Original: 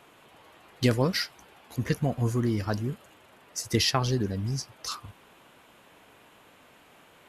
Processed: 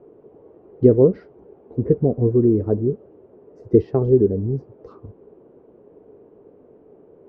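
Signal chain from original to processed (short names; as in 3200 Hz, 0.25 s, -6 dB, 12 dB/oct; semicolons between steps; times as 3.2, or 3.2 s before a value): synth low-pass 420 Hz, resonance Q 4.9; gain +5 dB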